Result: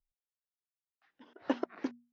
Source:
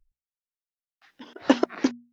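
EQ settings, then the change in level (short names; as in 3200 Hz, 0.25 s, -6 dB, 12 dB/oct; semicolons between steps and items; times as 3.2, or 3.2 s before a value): HPF 1300 Hz 6 dB/oct; tilt -4.5 dB/oct; high shelf 5100 Hz -4.5 dB; -7.5 dB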